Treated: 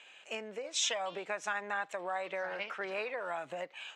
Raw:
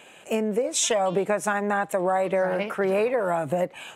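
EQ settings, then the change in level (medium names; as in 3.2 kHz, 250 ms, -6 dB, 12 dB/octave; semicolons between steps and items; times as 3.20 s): band-pass filter 7.2 kHz, Q 0.69; distance through air 190 m; +5.0 dB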